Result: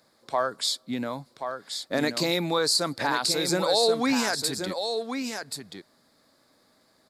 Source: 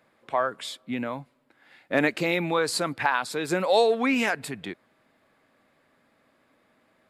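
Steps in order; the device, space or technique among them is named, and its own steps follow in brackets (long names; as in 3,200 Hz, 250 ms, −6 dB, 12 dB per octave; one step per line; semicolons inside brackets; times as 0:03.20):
over-bright horn tweeter (high shelf with overshoot 3,500 Hz +8.5 dB, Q 3; brickwall limiter −13 dBFS, peak gain reduction 11 dB)
single-tap delay 1,080 ms −7 dB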